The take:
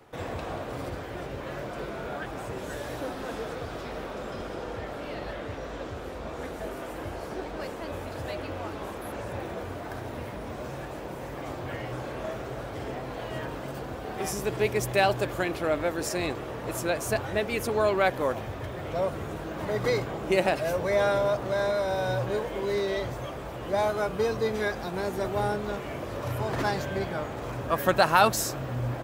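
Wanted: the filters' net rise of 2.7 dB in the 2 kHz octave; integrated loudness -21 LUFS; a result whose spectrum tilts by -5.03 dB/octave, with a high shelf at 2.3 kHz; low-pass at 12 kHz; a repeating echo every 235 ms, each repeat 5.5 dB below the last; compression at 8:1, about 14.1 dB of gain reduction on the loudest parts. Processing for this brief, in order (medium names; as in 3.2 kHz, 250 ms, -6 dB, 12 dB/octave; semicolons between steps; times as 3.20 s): low-pass 12 kHz; peaking EQ 2 kHz +7.5 dB; treble shelf 2.3 kHz -8 dB; compression 8:1, threshold -29 dBFS; feedback delay 235 ms, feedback 53%, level -5.5 dB; trim +12.5 dB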